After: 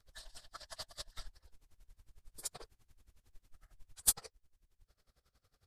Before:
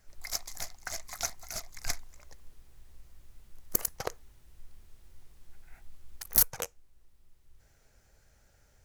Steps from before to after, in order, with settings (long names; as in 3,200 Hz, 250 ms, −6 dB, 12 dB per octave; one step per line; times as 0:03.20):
partials spread apart or drawn together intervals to 91%
time stretch by overlap-add 0.64×, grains 47 ms
tremolo with a sine in dB 11 Hz, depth 22 dB